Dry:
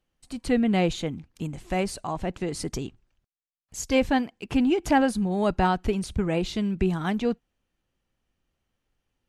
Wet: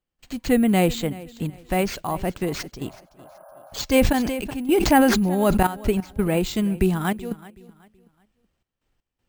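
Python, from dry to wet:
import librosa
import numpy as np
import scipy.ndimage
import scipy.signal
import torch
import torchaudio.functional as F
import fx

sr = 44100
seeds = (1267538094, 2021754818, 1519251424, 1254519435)

p1 = fx.spec_repair(x, sr, seeds[0], start_s=2.84, length_s=0.94, low_hz=540.0, high_hz=1700.0, source='before')
p2 = fx.step_gate(p1, sr, bpm=80, pattern='.xxxxx.x', floor_db=-12.0, edge_ms=4.5)
p3 = p2 + fx.echo_feedback(p2, sr, ms=376, feedback_pct=32, wet_db=-19.5, dry=0)
p4 = np.repeat(p3[::4], 4)[:len(p3)]
p5 = fx.sustainer(p4, sr, db_per_s=33.0, at=(3.99, 5.67))
y = p5 * librosa.db_to_amplitude(4.0)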